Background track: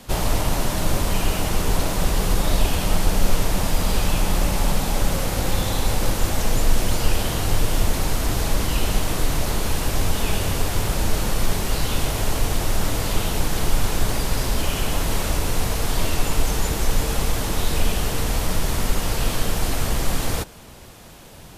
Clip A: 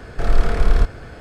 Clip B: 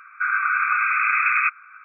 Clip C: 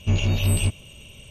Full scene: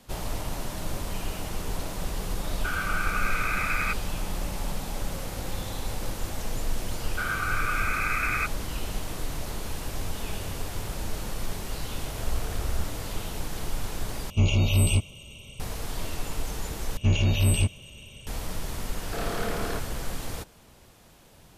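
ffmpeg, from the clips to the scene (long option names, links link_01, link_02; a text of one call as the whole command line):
ffmpeg -i bed.wav -i cue0.wav -i cue1.wav -i cue2.wav -filter_complex "[2:a]asplit=2[link_01][link_02];[1:a]asplit=2[link_03][link_04];[3:a]asplit=2[link_05][link_06];[0:a]volume=-11dB[link_07];[link_01]aeval=exprs='if(lt(val(0),0),0.708*val(0),val(0))':channel_layout=same[link_08];[link_03]aeval=exprs='val(0)*sin(2*PI*36*n/s)':channel_layout=same[link_09];[link_05]asuperstop=centerf=1700:order=12:qfactor=3[link_10];[link_04]highpass=170[link_11];[link_07]asplit=3[link_12][link_13][link_14];[link_12]atrim=end=14.304[link_15];[link_10]atrim=end=1.3,asetpts=PTS-STARTPTS,volume=-0.5dB[link_16];[link_13]atrim=start=15.596:end=16.974[link_17];[link_06]atrim=end=1.3,asetpts=PTS-STARTPTS,volume=-1dB[link_18];[link_14]atrim=start=18.266[link_19];[link_08]atrim=end=1.84,asetpts=PTS-STARTPTS,volume=-8dB,afade=type=in:duration=0.004:curve=hsin,afade=type=out:start_time=1.836:duration=0.004:curve=hsin,adelay=2440[link_20];[link_02]atrim=end=1.84,asetpts=PTS-STARTPTS,volume=-8.5dB,afade=type=in:duration=0.004:curve=hsin,afade=type=out:start_time=1.836:duration=0.004:curve=hsin,adelay=6970[link_21];[link_09]atrim=end=1.2,asetpts=PTS-STARTPTS,volume=-14dB,afade=type=in:duration=0.004:curve=hsin,afade=type=out:start_time=1.196:duration=0.004:curve=hsin,adelay=11980[link_22];[link_11]atrim=end=1.2,asetpts=PTS-STARTPTS,volume=-5dB,afade=type=in:duration=0.004:curve=hsin,afade=type=out:start_time=1.196:duration=0.004:curve=hsin,adelay=18940[link_23];[link_15][link_16]acrossfade=duration=0.004:curve1=hsin:curve2=hsin[link_24];[link_24][link_17]acrossfade=duration=0.004:curve1=hsin:curve2=hsin[link_25];[link_25][link_18]acrossfade=duration=0.004:curve1=hsin:curve2=hsin[link_26];[link_26][link_19]acrossfade=duration=0.004:curve1=hsin:curve2=hsin[link_27];[link_27][link_20][link_21][link_22][link_23]amix=inputs=5:normalize=0" out.wav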